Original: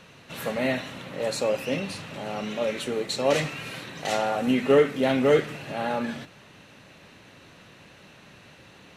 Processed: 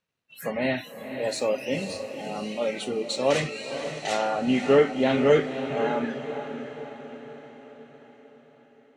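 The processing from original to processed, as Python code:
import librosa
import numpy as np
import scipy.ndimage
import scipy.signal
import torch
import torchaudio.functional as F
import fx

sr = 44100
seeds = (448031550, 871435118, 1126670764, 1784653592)

y = np.sign(x) * np.maximum(np.abs(x) - 10.0 ** (-54.0 / 20.0), 0.0)
y = fx.noise_reduce_blind(y, sr, reduce_db=28)
y = fx.echo_diffused(y, sr, ms=523, feedback_pct=54, wet_db=-9.0)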